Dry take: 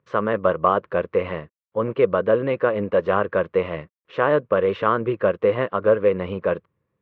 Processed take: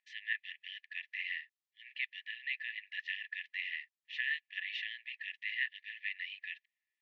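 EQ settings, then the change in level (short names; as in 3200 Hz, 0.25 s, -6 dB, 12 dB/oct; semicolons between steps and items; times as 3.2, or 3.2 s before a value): brick-wall FIR high-pass 1700 Hz; air absorption 79 m; notch 2200 Hz, Q 16; +1.5 dB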